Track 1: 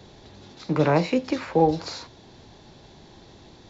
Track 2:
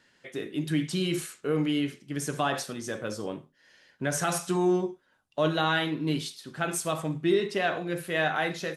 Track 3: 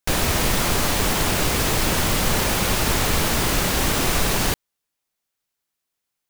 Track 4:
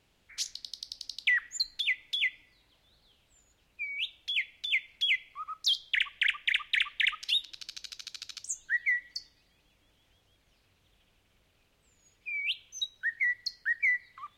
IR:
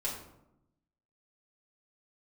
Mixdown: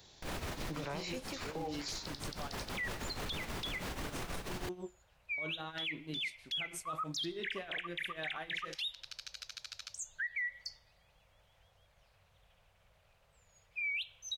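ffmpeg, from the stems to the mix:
-filter_complex "[0:a]equalizer=frequency=240:width_type=o:width=1.9:gain=-6.5,crystalizer=i=4:c=0,volume=-13dB,asplit=2[link_01][link_02];[1:a]volume=-12dB[link_03];[2:a]highshelf=frequency=5600:gain=-10.5,adelay=150,volume=-8dB[link_04];[3:a]firequalizer=gain_entry='entry(140,0);entry(280,-17);entry(550,4);entry(3000,-5)':delay=0.05:min_phase=1,adelay=1500,volume=1.5dB[link_05];[link_02]apad=whole_len=284084[link_06];[link_04][link_06]sidechaincompress=threshold=-46dB:ratio=6:attack=24:release=1220[link_07];[link_03][link_07]amix=inputs=2:normalize=0,tremolo=f=6.2:d=0.85,alimiter=limit=-22dB:level=0:latency=1:release=408,volume=0dB[link_08];[link_01][link_05]amix=inputs=2:normalize=0,alimiter=level_in=4dB:limit=-24dB:level=0:latency=1:release=137,volume=-4dB,volume=0dB[link_09];[link_08][link_09]amix=inputs=2:normalize=0,alimiter=level_in=7.5dB:limit=-24dB:level=0:latency=1:release=14,volume=-7.5dB"

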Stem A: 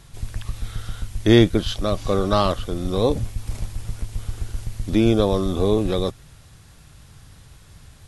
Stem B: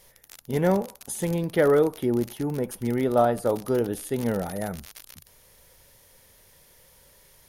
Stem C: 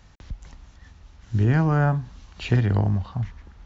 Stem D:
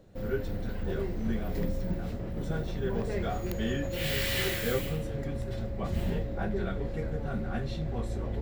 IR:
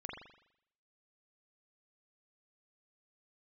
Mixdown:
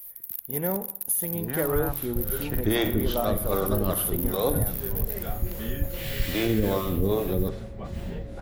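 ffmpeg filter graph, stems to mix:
-filter_complex "[0:a]highshelf=frequency=4200:gain=-8,acrossover=split=410[link_01][link_02];[link_01]aeval=exprs='val(0)*(1-1/2+1/2*cos(2*PI*2.5*n/s))':channel_layout=same[link_03];[link_02]aeval=exprs='val(0)*(1-1/2-1/2*cos(2*PI*2.5*n/s))':channel_layout=same[link_04];[link_03][link_04]amix=inputs=2:normalize=0,adelay=1400,volume=-1.5dB,asplit=2[link_05][link_06];[link_06]volume=-4dB[link_07];[1:a]aexciter=amount=10.1:drive=9.8:freq=11000,volume=-8dB,asplit=2[link_08][link_09];[link_09]volume=-11dB[link_10];[2:a]highpass=240,afwtdn=0.01,volume=-8dB[link_11];[3:a]adelay=2000,volume=-3.5dB[link_12];[4:a]atrim=start_sample=2205[link_13];[link_07][link_10]amix=inputs=2:normalize=0[link_14];[link_14][link_13]afir=irnorm=-1:irlink=0[link_15];[link_05][link_08][link_11][link_12][link_15]amix=inputs=5:normalize=0,alimiter=limit=-14dB:level=0:latency=1:release=39"

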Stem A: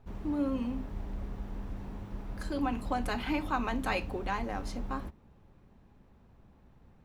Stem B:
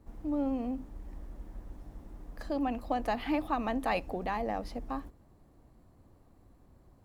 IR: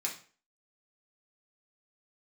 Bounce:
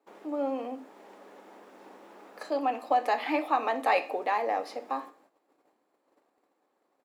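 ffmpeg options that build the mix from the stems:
-filter_complex "[0:a]volume=1.5dB[link_01];[1:a]adelay=2.5,volume=2dB,asplit=3[link_02][link_03][link_04];[link_03]volume=-3.5dB[link_05];[link_04]apad=whole_len=315088[link_06];[link_01][link_06]sidechaincompress=threshold=-39dB:ratio=8:attack=16:release=390[link_07];[2:a]atrim=start_sample=2205[link_08];[link_05][link_08]afir=irnorm=-1:irlink=0[link_09];[link_07][link_02][link_09]amix=inputs=3:normalize=0,highpass=frequency=360:width=0.5412,highpass=frequency=360:width=1.3066,agate=range=-12dB:threshold=-60dB:ratio=16:detection=peak,highshelf=frequency=6700:gain=-7"

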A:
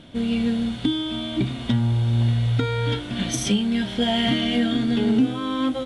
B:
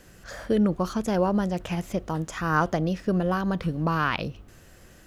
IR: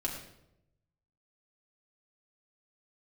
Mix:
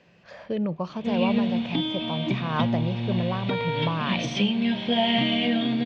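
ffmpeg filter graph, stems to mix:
-filter_complex "[0:a]adelay=900,volume=-3.5dB,asplit=2[link_01][link_02];[link_02]volume=-14.5dB[link_03];[1:a]volume=-5.5dB[link_04];[2:a]atrim=start_sample=2205[link_05];[link_03][link_05]afir=irnorm=-1:irlink=0[link_06];[link_01][link_04][link_06]amix=inputs=3:normalize=0,highpass=140,equalizer=frequency=160:width_type=q:width=4:gain=7,equalizer=frequency=310:width_type=q:width=4:gain=-5,equalizer=frequency=600:width_type=q:width=4:gain=5,equalizer=frequency=960:width_type=q:width=4:gain=5,equalizer=frequency=1400:width_type=q:width=4:gain=-7,equalizer=frequency=2500:width_type=q:width=4:gain=8,lowpass=frequency=4500:width=0.5412,lowpass=frequency=4500:width=1.3066"

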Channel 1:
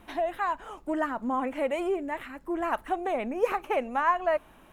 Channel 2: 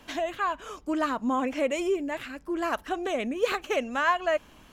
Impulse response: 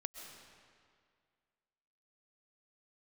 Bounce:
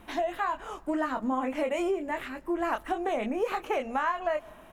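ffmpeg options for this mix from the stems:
-filter_complex "[0:a]volume=1dB,asplit=3[link_01][link_02][link_03];[link_02]volume=-19dB[link_04];[1:a]adelay=23,volume=-6.5dB[link_05];[link_03]apad=whole_len=209596[link_06];[link_05][link_06]sidechaingate=range=-33dB:threshold=-41dB:ratio=16:detection=peak[link_07];[2:a]atrim=start_sample=2205[link_08];[link_04][link_08]afir=irnorm=-1:irlink=0[link_09];[link_01][link_07][link_09]amix=inputs=3:normalize=0,acompressor=threshold=-25dB:ratio=6"

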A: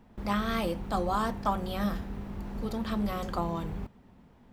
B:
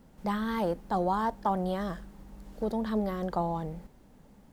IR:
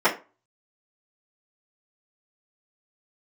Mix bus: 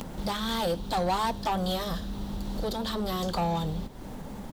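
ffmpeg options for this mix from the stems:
-filter_complex "[0:a]highshelf=frequency=2800:width_type=q:width=3:gain=9,acompressor=threshold=-32dB:ratio=2,asoftclip=type=hard:threshold=-30.5dB,volume=1dB[link_01];[1:a]equalizer=frequency=920:width_type=o:width=0.77:gain=2.5,acompressor=mode=upward:threshold=-29dB:ratio=2.5,asoftclip=type=tanh:threshold=-25.5dB,volume=-1,adelay=12,volume=2dB[link_02];[link_01][link_02]amix=inputs=2:normalize=0,acompressor=mode=upward:threshold=-34dB:ratio=2.5"

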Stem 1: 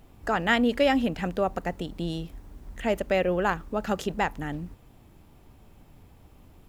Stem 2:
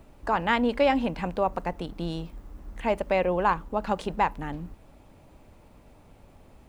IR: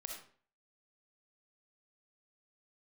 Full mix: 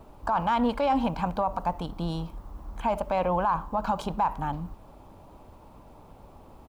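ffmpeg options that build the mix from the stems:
-filter_complex "[0:a]asoftclip=type=tanh:threshold=-20dB,equalizer=frequency=430:width_type=o:width=1.2:gain=9.5,volume=-9dB[link_01];[1:a]equalizer=frequency=1000:width_type=o:width=1:gain=9,equalizer=frequency=2000:width_type=o:width=1:gain=-8,equalizer=frequency=8000:width_type=o:width=1:gain=-4,adelay=1.4,volume=1dB,asplit=2[link_02][link_03];[link_03]volume=-16.5dB[link_04];[2:a]atrim=start_sample=2205[link_05];[link_04][link_05]afir=irnorm=-1:irlink=0[link_06];[link_01][link_02][link_06]amix=inputs=3:normalize=0,alimiter=limit=-16.5dB:level=0:latency=1:release=23"

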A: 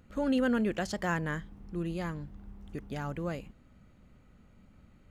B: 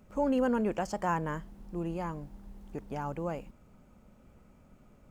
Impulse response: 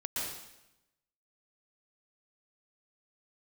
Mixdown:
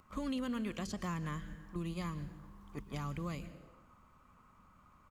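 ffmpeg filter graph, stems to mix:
-filter_complex "[0:a]volume=1dB,asplit=2[link_01][link_02];[link_02]volume=-17.5dB[link_03];[1:a]highpass=frequency=1100:width_type=q:width=8.8,adelay=1.2,volume=-5dB,asplit=2[link_04][link_05];[link_05]apad=whole_len=225088[link_06];[link_01][link_06]sidechaingate=range=-14dB:threshold=-53dB:ratio=16:detection=peak[link_07];[2:a]atrim=start_sample=2205[link_08];[link_03][link_08]afir=irnorm=-1:irlink=0[link_09];[link_07][link_04][link_09]amix=inputs=3:normalize=0,acrossover=split=300|2000[link_10][link_11][link_12];[link_10]acompressor=threshold=-38dB:ratio=4[link_13];[link_11]acompressor=threshold=-51dB:ratio=4[link_14];[link_12]acompressor=threshold=-47dB:ratio=4[link_15];[link_13][link_14][link_15]amix=inputs=3:normalize=0"

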